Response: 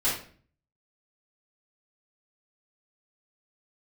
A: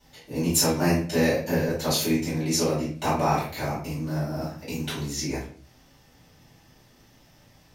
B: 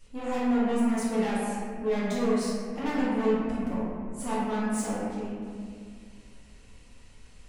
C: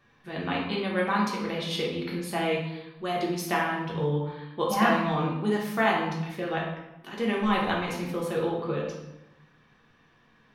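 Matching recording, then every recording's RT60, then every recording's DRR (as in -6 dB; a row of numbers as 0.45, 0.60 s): A; 0.45, 2.2, 0.95 s; -12.0, -10.5, -3.5 dB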